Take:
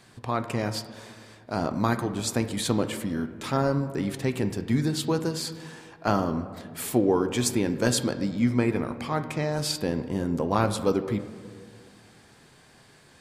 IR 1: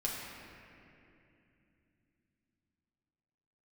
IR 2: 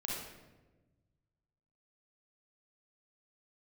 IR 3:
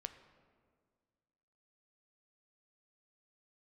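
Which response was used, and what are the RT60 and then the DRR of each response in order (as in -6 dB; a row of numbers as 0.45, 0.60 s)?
3; 2.8, 1.2, 1.8 s; -4.0, -4.0, 9.0 dB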